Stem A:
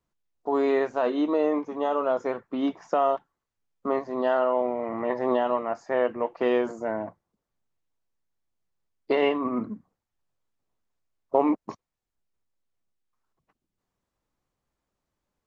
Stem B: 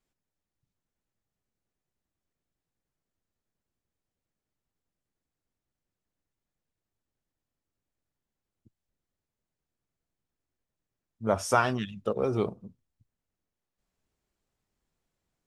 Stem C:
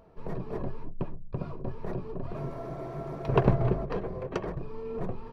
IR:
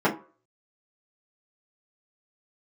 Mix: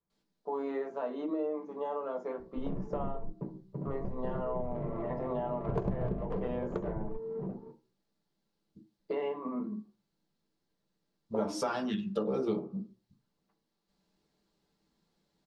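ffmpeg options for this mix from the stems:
-filter_complex "[0:a]volume=-15.5dB,asplit=3[link_01][link_02][link_03];[link_02]volume=-14dB[link_04];[1:a]equalizer=frequency=4300:width=1.5:gain=14.5,alimiter=limit=-15.5dB:level=0:latency=1:release=448,adelay=100,volume=-4.5dB,asplit=2[link_05][link_06];[link_06]volume=-10.5dB[link_07];[2:a]lowpass=1300,adynamicsmooth=sensitivity=4.5:basefreq=740,adelay=2400,volume=-2dB,asplit=2[link_08][link_09];[link_09]volume=-24dB[link_10];[link_03]apad=whole_len=340544[link_11];[link_08][link_11]sidechaingate=range=-33dB:threshold=-60dB:ratio=16:detection=peak[link_12];[3:a]atrim=start_sample=2205[link_13];[link_04][link_07][link_10]amix=inputs=3:normalize=0[link_14];[link_14][link_13]afir=irnorm=-1:irlink=0[link_15];[link_01][link_05][link_12][link_15]amix=inputs=4:normalize=0,lowshelf=frequency=240:gain=5.5,acompressor=threshold=-32dB:ratio=3"

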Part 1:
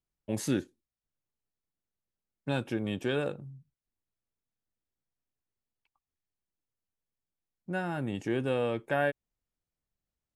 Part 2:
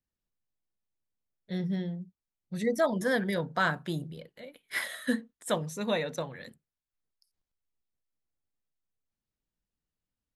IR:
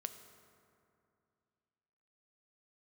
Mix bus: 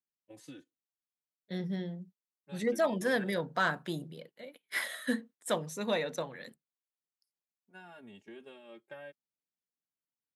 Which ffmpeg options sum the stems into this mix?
-filter_complex "[0:a]adynamicequalizer=threshold=0.00282:dfrequency=3200:dqfactor=1.5:tfrequency=3200:tqfactor=1.5:attack=5:release=100:ratio=0.375:range=3:mode=boostabove:tftype=bell,acompressor=threshold=-28dB:ratio=8,asplit=2[link_01][link_02];[link_02]adelay=3.4,afreqshift=-0.32[link_03];[link_01][link_03]amix=inputs=2:normalize=1,volume=-12.5dB[link_04];[1:a]asoftclip=type=tanh:threshold=-16dB,volume=-1dB[link_05];[link_04][link_05]amix=inputs=2:normalize=0,agate=range=-9dB:threshold=-52dB:ratio=16:detection=peak,highpass=190"

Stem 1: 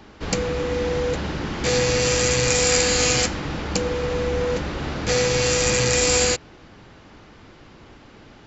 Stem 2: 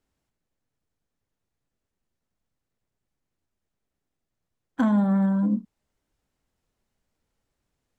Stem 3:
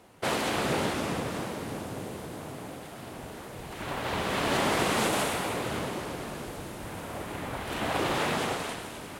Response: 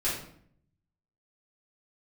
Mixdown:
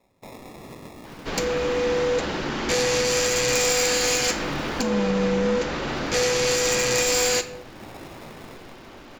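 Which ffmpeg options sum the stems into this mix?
-filter_complex "[0:a]asoftclip=type=tanh:threshold=-17dB,equalizer=frequency=88:width_type=o:width=1.8:gain=-13,adelay=1050,volume=2dB,asplit=2[link_01][link_02];[link_02]volume=-16dB[link_03];[1:a]aecho=1:1:1.2:0.65,volume=-4.5dB,asplit=2[link_04][link_05];[2:a]acrossover=split=290[link_06][link_07];[link_07]acompressor=threshold=-38dB:ratio=1.5[link_08];[link_06][link_08]amix=inputs=2:normalize=0,acrusher=samples=29:mix=1:aa=0.000001,volume=-10.5dB,asplit=2[link_09][link_10];[link_10]volume=-22.5dB[link_11];[link_05]apad=whole_len=405690[link_12];[link_09][link_12]sidechaincompress=threshold=-43dB:ratio=8:attack=16:release=353[link_13];[3:a]atrim=start_sample=2205[link_14];[link_03][link_11]amix=inputs=2:normalize=0[link_15];[link_15][link_14]afir=irnorm=-1:irlink=0[link_16];[link_01][link_04][link_13][link_16]amix=inputs=4:normalize=0,alimiter=limit=-13.5dB:level=0:latency=1:release=208"

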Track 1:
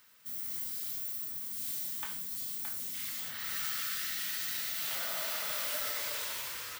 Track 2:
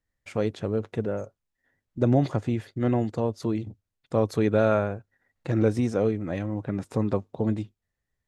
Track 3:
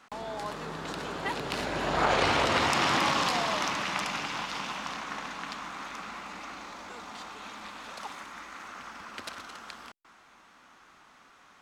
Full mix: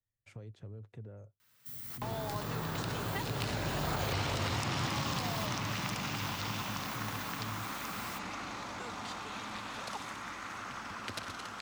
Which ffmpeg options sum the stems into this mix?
ffmpeg -i stem1.wav -i stem2.wav -i stem3.wav -filter_complex "[0:a]adelay=1400,volume=1.5dB[link_01];[1:a]alimiter=limit=-18.5dB:level=0:latency=1,acompressor=threshold=-37dB:ratio=3,volume=-15dB,asplit=2[link_02][link_03];[2:a]adelay=1900,volume=2dB[link_04];[link_03]apad=whole_len=361338[link_05];[link_01][link_05]sidechaincompress=threshold=-59dB:ratio=12:attack=5.3:release=891[link_06];[link_06][link_02][link_04]amix=inputs=3:normalize=0,equalizer=frequency=110:width=2:gain=14,acrossover=split=180|460|3900[link_07][link_08][link_09][link_10];[link_07]acompressor=threshold=-36dB:ratio=4[link_11];[link_08]acompressor=threshold=-45dB:ratio=4[link_12];[link_09]acompressor=threshold=-39dB:ratio=4[link_13];[link_10]acompressor=threshold=-42dB:ratio=4[link_14];[link_11][link_12][link_13][link_14]amix=inputs=4:normalize=0" out.wav

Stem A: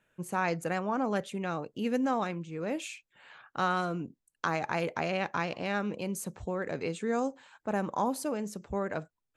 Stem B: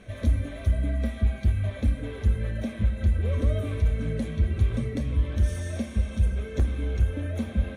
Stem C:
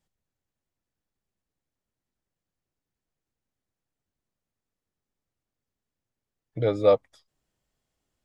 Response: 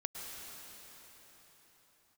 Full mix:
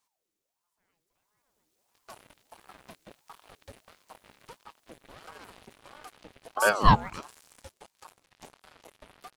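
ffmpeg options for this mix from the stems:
-filter_complex "[0:a]aeval=exprs='sgn(val(0))*max(abs(val(0))-0.00106,0)':channel_layout=same,adelay=450,volume=-3dB[link_01];[1:a]highpass=170,asoftclip=type=tanh:threshold=-23dB,acrusher=bits=4:mix=0:aa=0.5,adelay=1850,volume=-14dB[link_02];[2:a]dynaudnorm=framelen=520:gausssize=7:maxgain=15.5dB,volume=-2dB,asplit=2[link_03][link_04];[link_04]apad=whole_len=432937[link_05];[link_01][link_05]sidechaingate=range=-46dB:threshold=-49dB:ratio=16:detection=peak[link_06];[link_06][link_02][link_03]amix=inputs=3:normalize=0,highshelf=frequency=2400:gain=12,aeval=exprs='val(0)*sin(2*PI*680*n/s+680*0.55/1.5*sin(2*PI*1.5*n/s))':channel_layout=same"

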